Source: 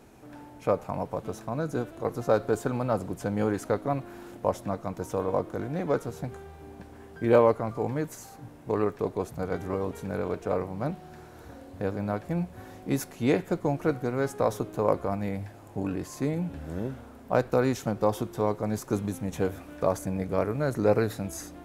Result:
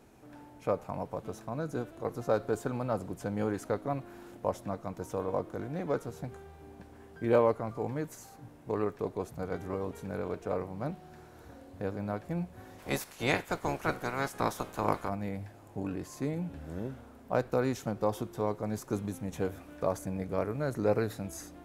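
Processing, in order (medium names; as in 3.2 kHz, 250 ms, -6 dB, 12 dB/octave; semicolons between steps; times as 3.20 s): 12.78–15.08 s: spectral peaks clipped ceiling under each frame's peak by 19 dB; trim -5 dB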